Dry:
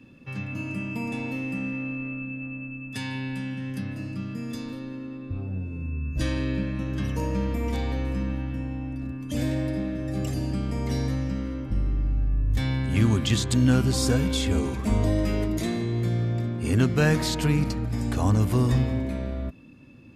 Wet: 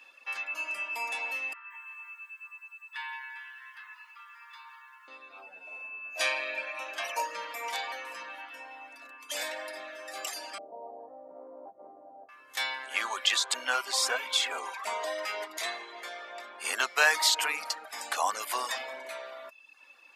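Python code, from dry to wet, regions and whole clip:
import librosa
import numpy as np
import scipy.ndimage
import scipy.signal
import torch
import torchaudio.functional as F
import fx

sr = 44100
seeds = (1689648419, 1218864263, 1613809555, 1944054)

y = fx.chain(x, sr, fx.cheby1_highpass(hz=880.0, order=8),
    fx.air_absorb(metres=500.0),
    fx.echo_crushed(ms=172, feedback_pct=35, bits=11, wet_db=-11.0), at=(1.53, 5.08))
y = fx.chain(y, sr, fx.low_shelf(hz=92.0, db=-10.0),
    fx.small_body(hz=(680.0, 2400.0), ring_ms=30, db=15), at=(5.67, 7.22))
y = fx.chain(y, sr, fx.cheby1_lowpass(hz=750.0, order=4),
    fx.hum_notches(base_hz=50, count=9),
    fx.env_flatten(amount_pct=100), at=(10.58, 12.29))
y = fx.chain(y, sr, fx.highpass(hz=210.0, slope=12),
    fx.high_shelf(hz=5300.0, db=-8.0), at=(12.84, 16.6))
y = fx.dereverb_blind(y, sr, rt60_s=0.72)
y = scipy.signal.sosfilt(scipy.signal.butter(4, 760.0, 'highpass', fs=sr, output='sos'), y)
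y = F.gain(torch.from_numpy(y), 6.5).numpy()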